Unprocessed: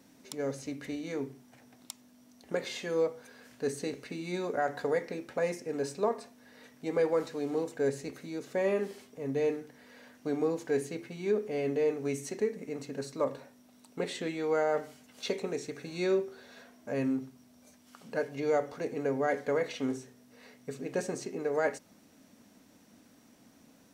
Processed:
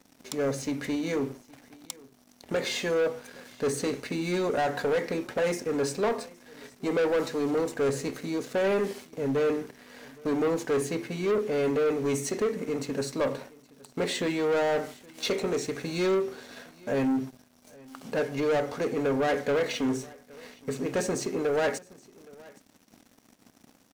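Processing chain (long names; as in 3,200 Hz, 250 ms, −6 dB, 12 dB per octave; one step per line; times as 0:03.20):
leveller curve on the samples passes 3
on a send: single-tap delay 818 ms −23.5 dB
on the sum: level −2.5 dB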